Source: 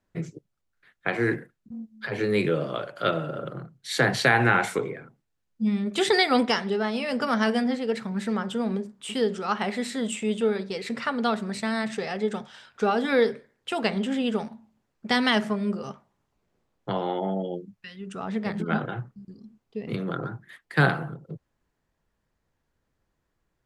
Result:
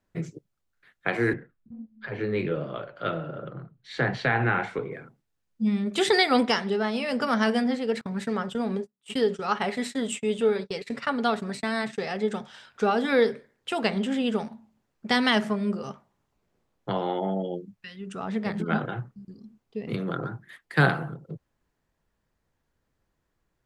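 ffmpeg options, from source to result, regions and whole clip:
-filter_complex "[0:a]asettb=1/sr,asplit=3[s0][s1][s2];[s0]atrim=end=1.334[s3];[s1]atrim=start=1.33:end=4.92,asetpts=PTS-STARTPTS,afade=t=in:d=0.004:c=qsin,afade=t=out:st=3.586:d=0.004:c=qsin,flanger=delay=4.6:depth=8.1:regen=-68:speed=1.4:shape=triangular,lowpass=3100,lowshelf=f=70:g=11[s4];[s2]atrim=start=4.916[s5];[s3][s4]acrossfade=d=0.004:c1=hsin:c2=qsin[s6];[s6][s5]acrossfade=d=0.004:c1=qsin:c2=hsin,asettb=1/sr,asplit=3[s7][s8][s9];[s7]atrim=end=8.014[s10];[s8]atrim=start=8.01:end=11.98,asetpts=PTS-STARTPTS,afade=t=in:d=0.004:c=qsin,afade=t=out:st=3.966:d=0.004:c=qsin,agate=range=0.0316:threshold=0.0178:ratio=16:release=100:detection=peak,aecho=1:1:7.1:0.33,atrim=end_sample=175077[s11];[s9]atrim=start=11.976[s12];[s10][s11]acrossfade=d=0.004:c1=hsin:c2=qsin[s13];[s13][s12]acrossfade=d=0.004:c1=qsin:c2=hsin"

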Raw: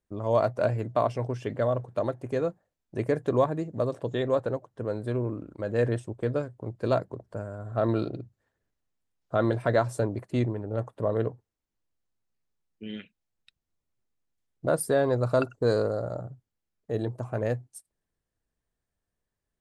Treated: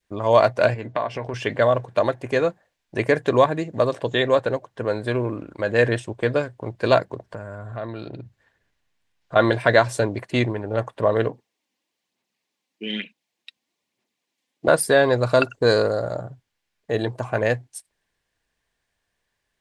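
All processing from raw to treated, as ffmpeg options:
-filter_complex "[0:a]asettb=1/sr,asplit=3[s0][s1][s2];[s0]atrim=end=0.744[s3];[s1]atrim=start=0.74:end=1.34,asetpts=PTS-STARTPTS,afade=t=in:d=0.004:c=qsin,afade=t=out:st=0.596:d=0.004:c=qsin,aemphasis=mode=reproduction:type=50kf,acompressor=threshold=0.0316:ratio=5:attack=3.2:release=140:knee=1:detection=peak,asplit=2[s4][s5];[s5]adelay=13,volume=0.282[s6];[s4][s6]amix=inputs=2:normalize=0,atrim=end_sample=26460[s7];[s2]atrim=start=1.336[s8];[s3][s7]acrossfade=d=0.004:c1=hsin:c2=qsin[s9];[s9][s8]acrossfade=d=0.004:c1=qsin:c2=hsin,asettb=1/sr,asplit=3[s10][s11][s12];[s10]atrim=end=7.324[s13];[s11]atrim=start=7.32:end=9.36,asetpts=PTS-STARTPTS,afade=t=in:d=0.004:c=qsin,afade=t=out:st=2.036:d=0.004:c=qsin,bass=f=250:g=5,treble=f=4000:g=-2,acompressor=threshold=0.0158:ratio=4:attack=3.2:release=140:knee=1:detection=peak[s14];[s12]atrim=start=9.356[s15];[s13][s14]acrossfade=d=0.004:c1=hsin:c2=qsin[s16];[s16][s15]acrossfade=d=0.004:c1=qsin:c2=hsin,asettb=1/sr,asplit=3[s17][s18][s19];[s17]atrim=end=11.294[s20];[s18]atrim=start=11.29:end=14.68,asetpts=PTS-STARTPTS,afade=t=in:d=0.004:c=qsin,afade=t=out:st=3.386:d=0.004:c=qsin,equalizer=f=1500:t=o:w=0.51:g=-7,aphaser=in_gain=1:out_gain=1:delay=3.9:decay=0.38:speed=1.1:type=sinusoidal,highpass=f=220:t=q:w=1.6[s21];[s19]atrim=start=14.676[s22];[s20][s21]acrossfade=d=0.004:c1=hsin:c2=qsin[s23];[s23][s22]acrossfade=d=0.004:c1=qsin:c2=hsin,equalizer=f=2400:w=0.31:g=14.5,bandreject=f=1300:w=8.8,adynamicequalizer=threshold=0.0251:dfrequency=1000:dqfactor=0.9:tfrequency=1000:tqfactor=0.9:attack=5:release=100:ratio=0.375:range=2.5:mode=cutabove:tftype=bell,volume=1.33"

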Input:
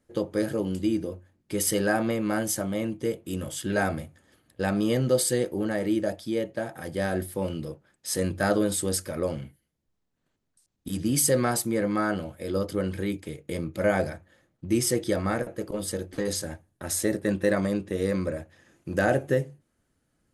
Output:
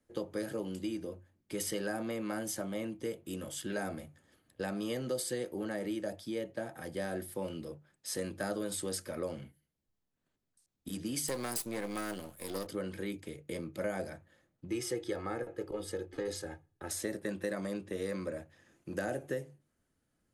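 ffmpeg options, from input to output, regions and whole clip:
-filter_complex "[0:a]asettb=1/sr,asplit=3[s0][s1][s2];[s0]atrim=end=11.284[s3];[s1]atrim=start=11.28:end=12.67,asetpts=PTS-STARTPTS,afade=t=in:d=0.004:c=qsin,afade=t=out:st=1.386:d=0.004:c=qsin,aeval=exprs='if(lt(val(0),0),0.251*val(0),val(0))':c=same,aemphasis=mode=production:type=75fm[s4];[s2]atrim=start=12.666[s5];[s3][s4]acrossfade=d=0.004:c1=hsin:c2=qsin[s6];[s6][s5]acrossfade=d=0.004:c1=qsin:c2=hsin,asettb=1/sr,asplit=3[s7][s8][s9];[s7]atrim=end=14.704[s10];[s8]atrim=start=14.7:end=16.91,asetpts=PTS-STARTPTS,afade=t=in:d=0.004:c=qsin,afade=t=out:st=2.206:d=0.004:c=qsin,highshelf=f=5500:g=-12,aecho=1:1:2.4:0.54,atrim=end_sample=97461[s11];[s9]atrim=start=16.906[s12];[s10][s11]acrossfade=d=0.004:c1=hsin:c2=qsin[s13];[s13][s12]acrossfade=d=0.004:c1=qsin:c2=hsin,bandreject=f=50:t=h:w=6,bandreject=f=100:t=h:w=6,bandreject=f=150:t=h:w=6,acrossover=split=180|550|5500[s14][s15][s16][s17];[s14]acompressor=threshold=0.00562:ratio=4[s18];[s15]acompressor=threshold=0.0282:ratio=4[s19];[s16]acompressor=threshold=0.0224:ratio=4[s20];[s17]acompressor=threshold=0.0224:ratio=4[s21];[s18][s19][s20][s21]amix=inputs=4:normalize=0,volume=0.501"

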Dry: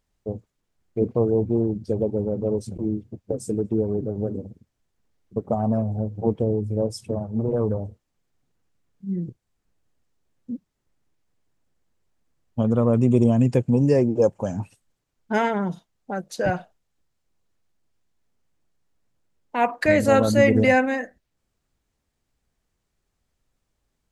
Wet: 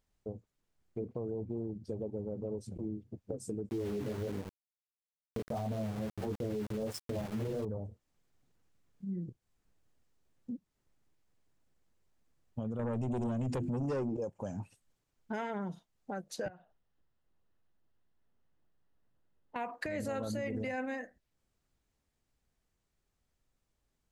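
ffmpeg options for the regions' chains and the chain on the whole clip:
-filter_complex "[0:a]asettb=1/sr,asplit=3[s0][s1][s2];[s0]atrim=end=3.694[s3];[s1]atrim=start=3.69:end=7.65,asetpts=PTS-STARTPTS,afade=t=in:d=0.004:c=qsin,afade=t=out:st=3.956:d=0.004:c=qsin,acontrast=90,flanger=delay=20:depth=4.1:speed=1.5,aeval=exprs='val(0)*gte(abs(val(0)),0.0335)':c=same[s4];[s2]atrim=start=7.646[s5];[s3][s4]acrossfade=d=0.004:c1=hsin:c2=qsin[s6];[s6][s5]acrossfade=d=0.004:c1=qsin:c2=hsin,asettb=1/sr,asplit=3[s7][s8][s9];[s7]atrim=end=12.794[s10];[s8]atrim=start=12.79:end=14.17,asetpts=PTS-STARTPTS,afade=t=in:d=0.004:c=qsin,afade=t=out:st=1.376:d=0.004:c=qsin,bandreject=f=50:t=h:w=6,bandreject=f=100:t=h:w=6,bandreject=f=150:t=h:w=6,bandreject=f=200:t=h:w=6,bandreject=f=250:t=h:w=6,bandreject=f=300:t=h:w=6,bandreject=f=350:t=h:w=6,acontrast=31,aeval=exprs='0.631*sin(PI/2*1.78*val(0)/0.631)':c=same[s11];[s9]atrim=start=14.166[s12];[s10][s11]acrossfade=d=0.004:c1=hsin:c2=qsin[s13];[s13][s12]acrossfade=d=0.004:c1=qsin:c2=hsin,asettb=1/sr,asplit=3[s14][s15][s16];[s14]atrim=end=16.484[s17];[s15]atrim=start=16.48:end=19.56,asetpts=PTS-STARTPTS,afade=t=in:d=0.004:c=qsin,afade=t=out:st=3.076:d=0.004:c=qsin,lowpass=3100,acompressor=threshold=0.00224:ratio=2:attack=3.2:release=140:knee=1:detection=peak,bandreject=f=2300:w=7.4[s18];[s16]atrim=start=19.556[s19];[s17][s18]acrossfade=d=0.004:c1=hsin:c2=qsin[s20];[s20][s19]acrossfade=d=0.004:c1=qsin:c2=hsin,dynaudnorm=f=670:g=11:m=1.78,alimiter=limit=0.224:level=0:latency=1:release=26,acompressor=threshold=0.0126:ratio=2,volume=0.562"

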